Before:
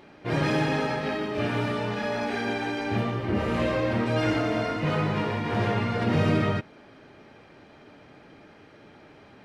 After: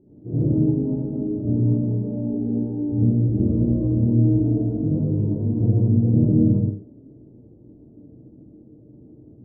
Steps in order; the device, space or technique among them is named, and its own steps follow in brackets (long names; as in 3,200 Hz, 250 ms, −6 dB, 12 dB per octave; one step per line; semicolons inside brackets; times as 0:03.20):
next room (low-pass filter 350 Hz 24 dB per octave; convolution reverb RT60 0.50 s, pre-delay 66 ms, DRR −8.5 dB)